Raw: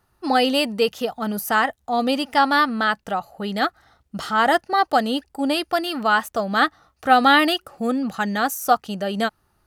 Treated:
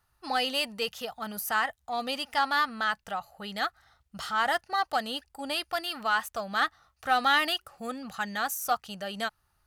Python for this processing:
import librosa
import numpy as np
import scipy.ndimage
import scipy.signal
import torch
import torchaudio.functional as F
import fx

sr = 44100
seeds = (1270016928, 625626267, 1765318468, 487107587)

p1 = fx.peak_eq(x, sr, hz=300.0, db=-13.5, octaves=2.0)
p2 = 10.0 ** (-22.5 / 20.0) * np.tanh(p1 / 10.0 ** (-22.5 / 20.0))
p3 = p1 + F.gain(torch.from_numpy(p2), -6.0).numpy()
y = F.gain(torch.from_numpy(p3), -7.5).numpy()